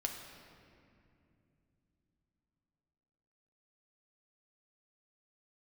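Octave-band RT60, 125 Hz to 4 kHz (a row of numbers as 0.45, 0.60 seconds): 4.7, 4.5, 3.0, 2.3, 2.2, 1.6 seconds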